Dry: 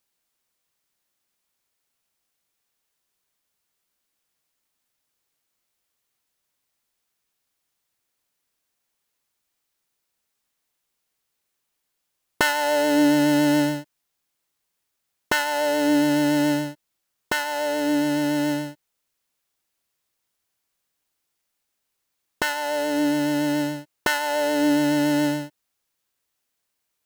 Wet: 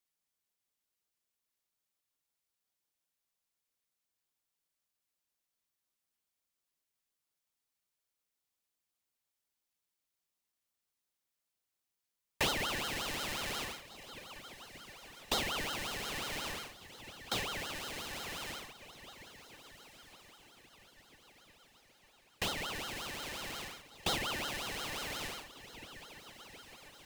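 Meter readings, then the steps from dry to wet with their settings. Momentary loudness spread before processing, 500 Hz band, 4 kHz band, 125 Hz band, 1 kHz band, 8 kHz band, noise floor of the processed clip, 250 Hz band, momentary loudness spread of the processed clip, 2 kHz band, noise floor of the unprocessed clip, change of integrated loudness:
9 LU, -20.0 dB, -6.0 dB, -14.5 dB, -14.5 dB, -9.0 dB, under -85 dBFS, -27.0 dB, 18 LU, -13.0 dB, -78 dBFS, -15.5 dB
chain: elliptic band-stop 120–770 Hz; diffused feedback echo 1.685 s, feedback 46%, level -14.5 dB; ring modulator with a swept carrier 1600 Hz, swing 45%, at 5.6 Hz; gain -7 dB

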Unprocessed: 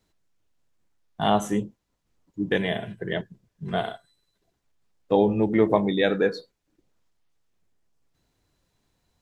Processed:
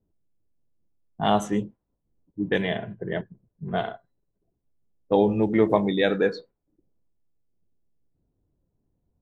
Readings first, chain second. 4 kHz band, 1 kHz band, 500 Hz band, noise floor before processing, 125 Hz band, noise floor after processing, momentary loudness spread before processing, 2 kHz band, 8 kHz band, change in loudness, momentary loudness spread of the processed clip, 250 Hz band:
-1.0 dB, 0.0 dB, 0.0 dB, -76 dBFS, 0.0 dB, -78 dBFS, 14 LU, -0.5 dB, n/a, 0.0 dB, 14 LU, 0.0 dB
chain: low-pass opened by the level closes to 430 Hz, open at -17 dBFS

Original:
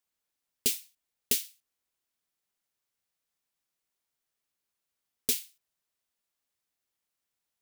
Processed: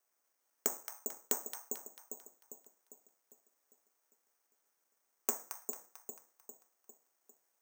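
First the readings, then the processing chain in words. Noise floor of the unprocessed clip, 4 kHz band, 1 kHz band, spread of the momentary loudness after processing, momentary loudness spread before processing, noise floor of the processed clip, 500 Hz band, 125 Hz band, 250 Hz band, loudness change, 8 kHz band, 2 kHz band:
under -85 dBFS, -17.0 dB, n/a, 19 LU, 7 LU, -81 dBFS, +1.0 dB, under -10 dB, -5.0 dB, -9.5 dB, -5.0 dB, -6.5 dB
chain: median filter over 15 samples; treble ducked by the level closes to 1000 Hz, closed at -41.5 dBFS; HPF 410 Hz 12 dB/oct; compressor, threshold -45 dBFS, peak gain reduction 9 dB; split-band echo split 780 Hz, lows 0.401 s, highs 0.222 s, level -6 dB; careless resampling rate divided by 6×, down filtered, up zero stuff; gain +8 dB

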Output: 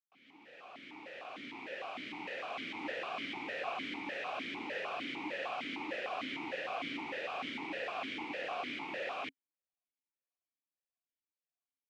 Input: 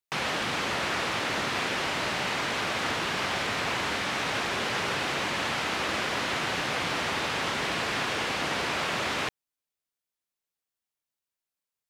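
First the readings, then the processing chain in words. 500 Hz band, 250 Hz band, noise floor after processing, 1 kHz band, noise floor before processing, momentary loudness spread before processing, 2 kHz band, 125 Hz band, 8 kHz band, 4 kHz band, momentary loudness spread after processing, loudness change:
-9.0 dB, -8.5 dB, under -85 dBFS, -11.5 dB, under -85 dBFS, 0 LU, -12.5 dB, -22.0 dB, -27.0 dB, -15.0 dB, 8 LU, -11.5 dB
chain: opening faded in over 2.91 s; vowel sequencer 6.6 Hz; gain +1.5 dB

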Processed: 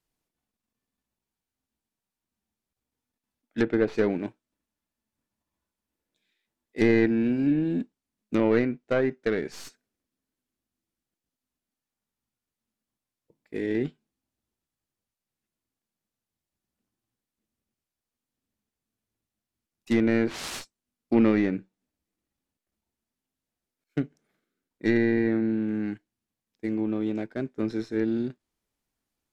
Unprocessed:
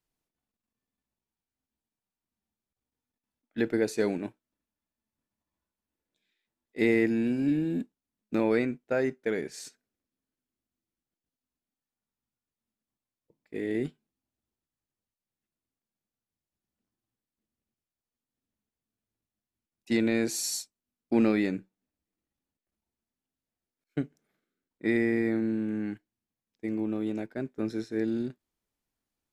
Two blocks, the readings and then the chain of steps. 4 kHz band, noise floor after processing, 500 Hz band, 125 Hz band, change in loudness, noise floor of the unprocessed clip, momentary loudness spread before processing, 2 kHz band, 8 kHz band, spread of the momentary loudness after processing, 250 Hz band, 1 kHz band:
-0.5 dB, under -85 dBFS, +3.0 dB, +4.5 dB, +3.0 dB, under -85 dBFS, 14 LU, +2.0 dB, -8.5 dB, 14 LU, +3.0 dB, +3.5 dB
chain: tracing distortion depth 0.4 ms; treble ducked by the level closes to 2400 Hz, closed at -22 dBFS; gain +3 dB

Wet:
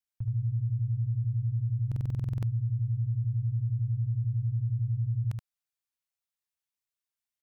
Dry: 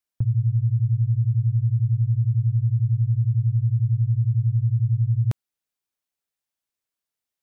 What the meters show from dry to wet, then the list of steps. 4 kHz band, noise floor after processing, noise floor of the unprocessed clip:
n/a, under -85 dBFS, under -85 dBFS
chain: bell 340 Hz -13 dB 1.6 oct; limiter -20.5 dBFS, peak gain reduction 3.5 dB; on a send: echo 75 ms -4.5 dB; on the sum: stuck buffer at 1.87, samples 2048, times 11; gain -6 dB

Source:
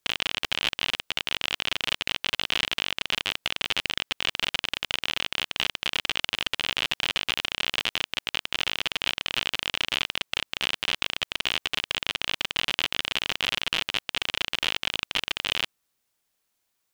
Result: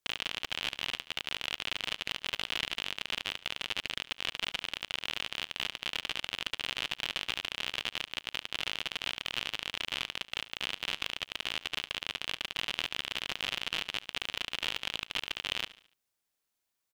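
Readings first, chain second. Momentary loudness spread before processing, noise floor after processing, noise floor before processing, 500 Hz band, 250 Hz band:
2 LU, -84 dBFS, -77 dBFS, -7.5 dB, -7.5 dB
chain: feedback echo 72 ms, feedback 44%, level -17.5 dB; gain -7.5 dB

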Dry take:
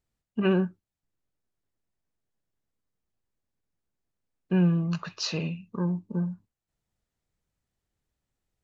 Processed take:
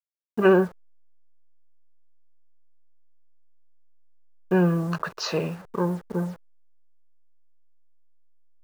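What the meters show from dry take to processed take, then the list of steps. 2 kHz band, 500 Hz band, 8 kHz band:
+8.0 dB, +9.0 dB, n/a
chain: level-crossing sampler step -45 dBFS; band shelf 800 Hz +10.5 dB 2.6 oct

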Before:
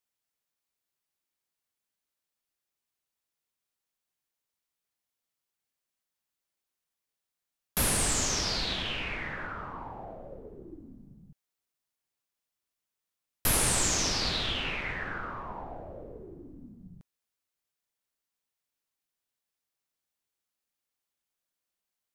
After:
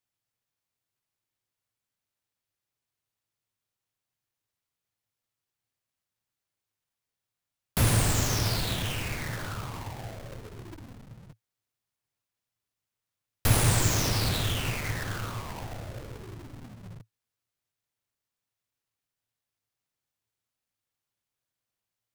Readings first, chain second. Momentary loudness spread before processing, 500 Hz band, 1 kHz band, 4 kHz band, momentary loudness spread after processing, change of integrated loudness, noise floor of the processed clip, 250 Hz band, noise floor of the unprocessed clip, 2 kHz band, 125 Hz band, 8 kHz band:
22 LU, +2.0 dB, +1.0 dB, -1.5 dB, 21 LU, +1.0 dB, under -85 dBFS, +4.0 dB, under -85 dBFS, 0.0 dB, +11.5 dB, -2.5 dB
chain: half-waves squared off; bell 110 Hz +14.5 dB 0.6 oct; gain -3.5 dB

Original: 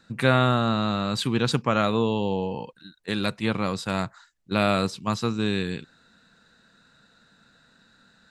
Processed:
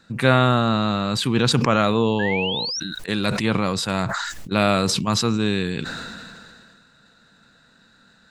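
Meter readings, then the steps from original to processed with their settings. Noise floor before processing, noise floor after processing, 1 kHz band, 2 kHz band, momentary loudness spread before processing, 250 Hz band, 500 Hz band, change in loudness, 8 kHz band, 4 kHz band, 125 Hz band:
-61 dBFS, -56 dBFS, +4.0 dB, +5.0 dB, 11 LU, +4.0 dB, +3.5 dB, +4.0 dB, +10.5 dB, +7.0 dB, +4.0 dB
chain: painted sound rise, 2.19–2.8, 1600–5900 Hz -30 dBFS; sustainer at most 26 dB/s; gain +3 dB

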